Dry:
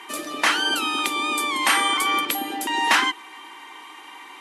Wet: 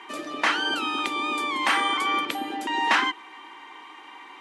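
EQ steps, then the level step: low-pass 8.5 kHz 12 dB/octave; treble shelf 4.7 kHz -10.5 dB; -1.5 dB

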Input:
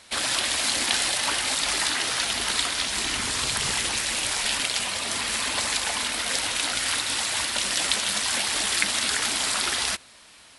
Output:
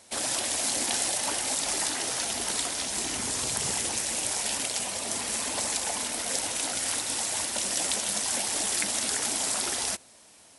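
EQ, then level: high-pass 120 Hz 6 dB/octave; high-order bell 2.2 kHz -9 dB 2.4 oct; 0.0 dB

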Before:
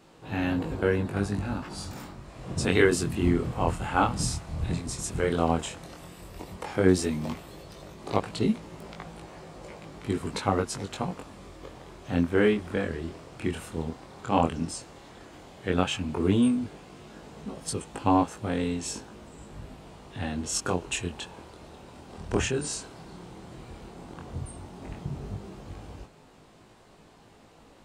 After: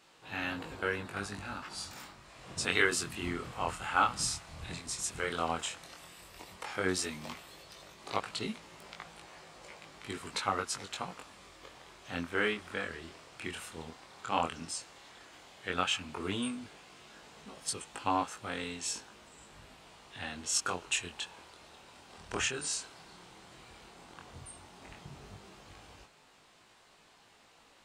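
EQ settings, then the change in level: dynamic bell 1.3 kHz, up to +5 dB, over -49 dBFS, Q 5.2; tilt shelf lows -9 dB, about 770 Hz; treble shelf 7.2 kHz -5.5 dB; -7.0 dB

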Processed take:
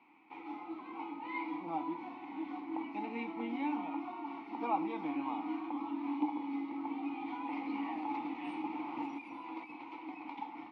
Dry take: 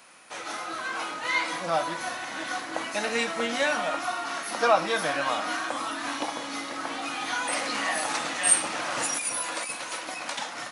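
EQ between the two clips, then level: dynamic bell 1.9 kHz, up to -6 dB, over -41 dBFS, Q 1; vowel filter u; distance through air 360 m; +6.5 dB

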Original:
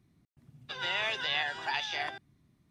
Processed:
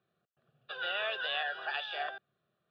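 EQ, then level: band-pass 390–2400 Hz; static phaser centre 1.4 kHz, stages 8; +3.5 dB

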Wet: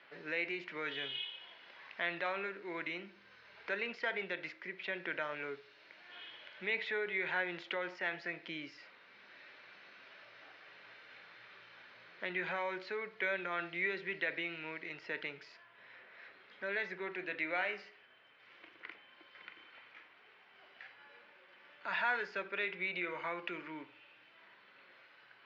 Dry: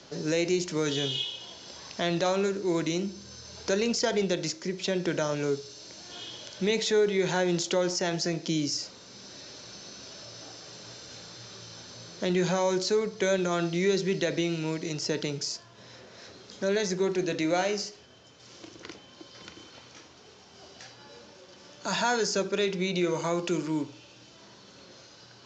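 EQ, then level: band-pass filter 2.1 kHz, Q 2.4; distance through air 450 m; +6.5 dB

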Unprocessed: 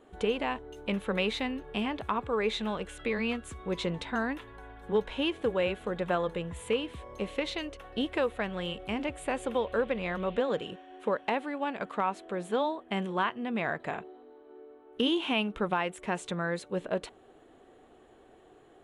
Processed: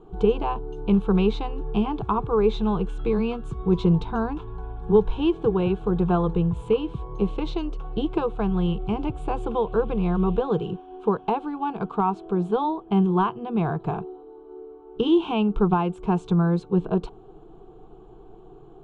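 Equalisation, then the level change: distance through air 62 m; RIAA curve playback; static phaser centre 380 Hz, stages 8; +7.5 dB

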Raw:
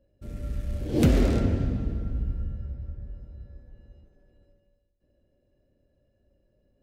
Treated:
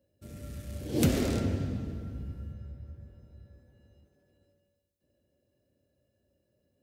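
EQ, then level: high-pass 72 Hz 24 dB/octave; treble shelf 4.1 kHz +11 dB; -4.5 dB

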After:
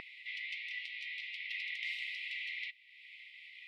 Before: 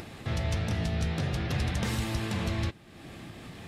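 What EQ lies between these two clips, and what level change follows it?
brick-wall FIR high-pass 1.9 kHz; distance through air 420 m; treble shelf 2.5 kHz -11 dB; +13.5 dB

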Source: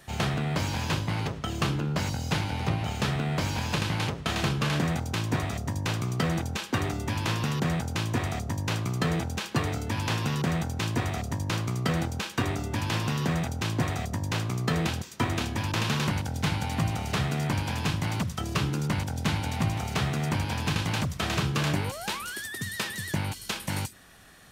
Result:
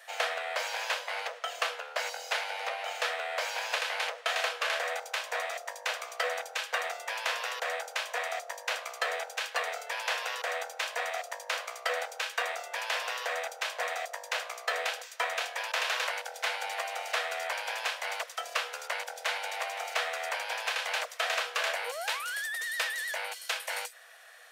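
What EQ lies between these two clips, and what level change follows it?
rippled Chebyshev high-pass 470 Hz, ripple 6 dB; +3.5 dB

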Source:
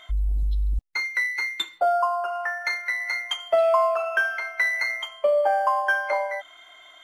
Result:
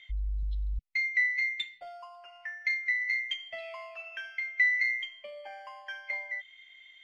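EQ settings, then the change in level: dynamic bell 840 Hz, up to +4 dB, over -31 dBFS, Q 1.1; FFT filter 150 Hz 0 dB, 420 Hz -18 dB, 1.4 kHz -20 dB, 2 kHz +7 dB, 5.4 kHz -3 dB, 11 kHz -19 dB; -8.5 dB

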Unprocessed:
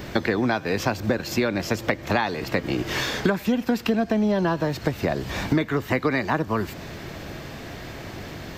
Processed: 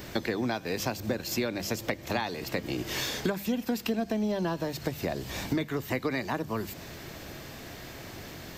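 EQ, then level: hum notches 50/100/150/200 Hz; dynamic bell 1.4 kHz, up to -4 dB, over -39 dBFS, Q 1.4; treble shelf 5.7 kHz +11 dB; -7.0 dB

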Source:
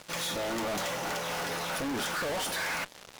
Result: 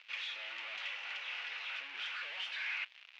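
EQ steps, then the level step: resonant high-pass 2.6 kHz, resonance Q 3.3; distance through air 68 m; tape spacing loss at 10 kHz 37 dB; +2.0 dB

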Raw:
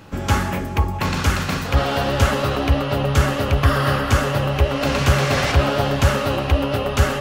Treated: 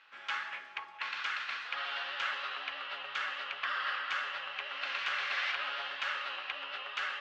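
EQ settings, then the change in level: Butterworth band-pass 2.3 kHz, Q 0.92; distance through air 52 m; -8.0 dB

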